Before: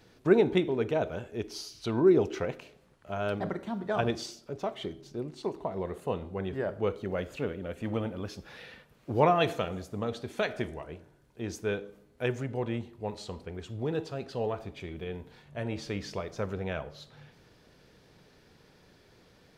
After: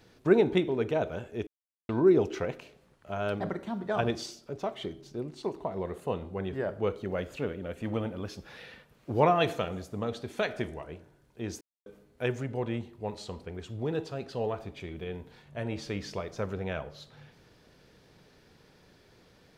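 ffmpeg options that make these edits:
-filter_complex "[0:a]asplit=5[s0][s1][s2][s3][s4];[s0]atrim=end=1.47,asetpts=PTS-STARTPTS,afade=t=out:st=1.466:d=0.004:c=hsin[s5];[s1]atrim=start=1.47:end=1.89,asetpts=PTS-STARTPTS,volume=0[s6];[s2]atrim=start=1.89:end=11.61,asetpts=PTS-STARTPTS,afade=t=in:d=0.004:c=hsin,afade=t=out:st=9.716:d=0.004:c=hsin[s7];[s3]atrim=start=11.61:end=11.86,asetpts=PTS-STARTPTS,volume=0[s8];[s4]atrim=start=11.86,asetpts=PTS-STARTPTS,afade=t=in:d=0.004:c=hsin[s9];[s5][s6][s7][s8][s9]concat=n=5:v=0:a=1"

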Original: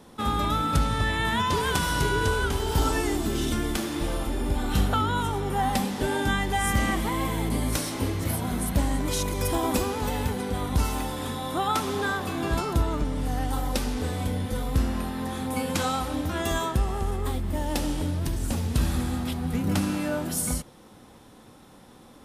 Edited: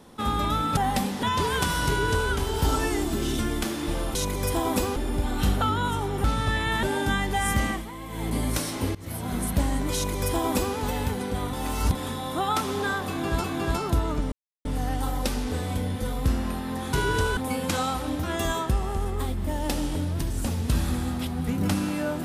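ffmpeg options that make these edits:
-filter_complex "[0:a]asplit=16[s0][s1][s2][s3][s4][s5][s6][s7][s8][s9][s10][s11][s12][s13][s14][s15];[s0]atrim=end=0.772[s16];[s1]atrim=start=5.558:end=6.022[s17];[s2]atrim=start=1.358:end=4.282[s18];[s3]atrim=start=9.128:end=9.942[s19];[s4]atrim=start=4.278:end=5.562[s20];[s5]atrim=start=0.768:end=1.362[s21];[s6]atrim=start=6.018:end=7.05,asetpts=PTS-STARTPTS,afade=t=out:st=0.682:d=0.35:c=qsin:silence=0.281838[s22];[s7]atrim=start=7.05:end=7.27,asetpts=PTS-STARTPTS,volume=0.282[s23];[s8]atrim=start=7.27:end=8.14,asetpts=PTS-STARTPTS,afade=t=in:d=0.35:c=qsin:silence=0.281838,afade=t=out:st=0.866:d=0.004:c=hsin:silence=0.105925[s24];[s9]atrim=start=8.14:end=10.722,asetpts=PTS-STARTPTS,afade=t=in:d=0.41:silence=0.105925[s25];[s10]atrim=start=10.718:end=11.142,asetpts=PTS-STARTPTS,areverse[s26];[s11]atrim=start=11.138:end=12.632[s27];[s12]atrim=start=12.268:end=13.15,asetpts=PTS-STARTPTS,afade=t=out:st=0.878:d=0.004:c=hsin,apad=pad_dur=0.33[s28];[s13]atrim=start=13.15:end=15.432,asetpts=PTS-STARTPTS,afade=t=in:d=0.004:c=hsin[s29];[s14]atrim=start=1.998:end=2.442[s30];[s15]atrim=start=15.428[s31];[s16][s17]acrossfade=d=0.004:c1=hsin:c2=hsin[s32];[s32][s18]acrossfade=d=0.004:c1=hsin:c2=hsin[s33];[s33][s19]acrossfade=d=0.004:c1=hsin:c2=hsin[s34];[s34][s20]acrossfade=d=0.004:c1=hsin:c2=hsin[s35];[s35][s21]acrossfade=d=0.004:c1=hsin:c2=hsin[s36];[s22][s23][s24][s25]concat=n=4:v=0:a=1[s37];[s36][s37]acrossfade=d=0.004:c1=hsin:c2=hsin[s38];[s38][s26]acrossfade=d=0.004:c1=hsin:c2=hsin[s39];[s39][s27]acrossfade=d=0.004:c1=hsin:c2=hsin[s40];[s28][s29]concat=n=2:v=0:a=1[s41];[s40][s41]acrossfade=d=0.004:c1=hsin:c2=hsin[s42];[s42][s30]acrossfade=d=0.004:c1=hsin:c2=hsin[s43];[s43][s31]acrossfade=d=0.004:c1=hsin:c2=hsin"

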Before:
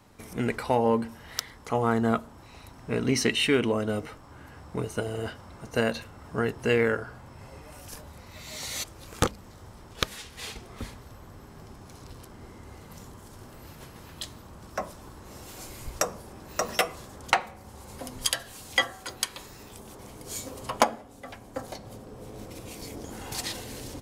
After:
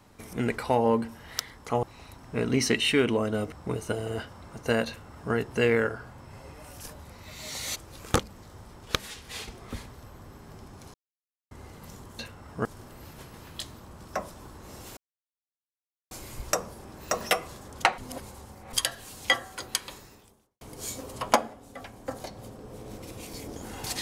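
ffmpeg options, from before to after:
-filter_complex "[0:a]asplit=11[s0][s1][s2][s3][s4][s5][s6][s7][s8][s9][s10];[s0]atrim=end=1.832[s11];[s1]atrim=start=2.378:end=4.072[s12];[s2]atrim=start=4.598:end=12.02,asetpts=PTS-STARTPTS,afade=t=out:st=7.418:d=0.004:c=hsin[s13];[s3]atrim=start=12.02:end=12.59,asetpts=PTS-STARTPTS,volume=0[s14];[s4]atrim=start=12.59:end=13.272,asetpts=PTS-STARTPTS,afade=t=in:d=0.004:c=hsin[s15];[s5]atrim=start=5.948:end=6.412[s16];[s6]atrim=start=13.268:end=15.59,asetpts=PTS-STARTPTS,afade=t=out:st=2.318:d=0.004:c=hsin,apad=pad_dur=1.14[s17];[s7]atrim=start=15.59:end=17.462,asetpts=PTS-STARTPTS,afade=t=in:d=0.004:c=hsin[s18];[s8]atrim=start=17.458:end=18.212,asetpts=PTS-STARTPTS,areverse[s19];[s9]atrim=start=18.208:end=20.09,asetpts=PTS-STARTPTS,afade=t=out:st=1.192:d=0.69:c=qua[s20];[s10]atrim=start=20.09,asetpts=PTS-STARTPTS,afade=t=in:d=0.004:c=hsin[s21];[s11][s12]acrossfade=d=0.004:c1=hsin:c2=hsin[s22];[s13][s14][s15]concat=n=3:v=0:a=1[s23];[s22][s23]acrossfade=d=0.004:c1=hsin:c2=hsin[s24];[s24][s16]acrossfade=d=0.004:c1=hsin:c2=hsin[s25];[s17][s18]concat=n=2:v=0:a=1[s26];[s25][s26]acrossfade=d=0.004:c1=hsin:c2=hsin[s27];[s27][s19]acrossfade=d=0.004:c1=hsin:c2=hsin[s28];[s20][s21]concat=n=2:v=0:a=1[s29];[s28][s29]acrossfade=d=0.004:c1=hsin:c2=hsin"

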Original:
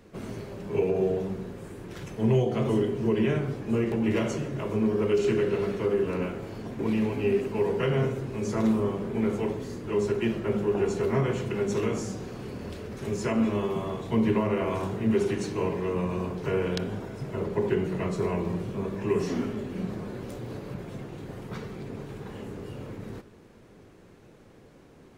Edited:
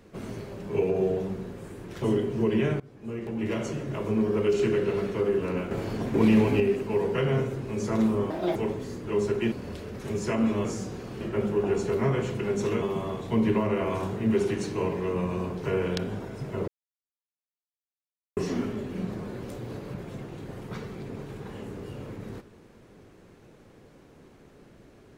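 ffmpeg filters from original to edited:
-filter_complex "[0:a]asplit=13[s0][s1][s2][s3][s4][s5][s6][s7][s8][s9][s10][s11][s12];[s0]atrim=end=2.022[s13];[s1]atrim=start=2.668:end=3.45,asetpts=PTS-STARTPTS,afade=t=out:st=0.778:d=0.004:c=hsin:silence=0.0794328[s14];[s2]atrim=start=3.45:end=6.362,asetpts=PTS-STARTPTS,afade=t=in:d=1.12:silence=0.0794328[s15];[s3]atrim=start=6.358:end=7.252,asetpts=PTS-STARTPTS,volume=2.11[s16];[s4]atrim=start=7.248:end=8.954[s17];[s5]atrim=start=8.95:end=9.36,asetpts=PTS-STARTPTS,asetrate=70119,aresample=44100[s18];[s6]atrim=start=9.356:end=10.322[s19];[s7]atrim=start=12.488:end=13.622[s20];[s8]atrim=start=11.928:end=12.492[s21];[s9]atrim=start=10.318:end=11.932[s22];[s10]atrim=start=13.618:end=17.48,asetpts=PTS-STARTPTS,afade=t=out:st=3.858:d=0.004:c=hsin[s23];[s11]atrim=start=17.48:end=19.17,asetpts=PTS-STARTPTS,volume=0[s24];[s12]atrim=start=19.17,asetpts=PTS-STARTPTS,afade=t=in:d=0.004:c=hsin[s25];[s14][s15]concat=n=2:v=0:a=1[s26];[s13][s26]acrossfade=d=0.004:c1=hsin:c2=hsin[s27];[s27][s16]acrossfade=d=0.004:c1=hsin:c2=hsin[s28];[s28][s17]acrossfade=d=0.004:c1=hsin:c2=hsin[s29];[s29][s18]acrossfade=d=0.004:c1=hsin:c2=hsin[s30];[s30][s19]acrossfade=d=0.004:c1=hsin:c2=hsin[s31];[s31][s20]acrossfade=d=0.004:c1=hsin:c2=hsin[s32];[s32][s21]acrossfade=d=0.004:c1=hsin:c2=hsin[s33];[s33][s22]acrossfade=d=0.004:c1=hsin:c2=hsin[s34];[s23][s24][s25]concat=n=3:v=0:a=1[s35];[s34][s35]acrossfade=d=0.004:c1=hsin:c2=hsin"

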